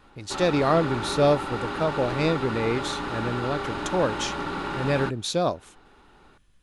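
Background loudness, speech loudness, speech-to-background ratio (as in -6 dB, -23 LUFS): -31.0 LUFS, -26.0 LUFS, 5.0 dB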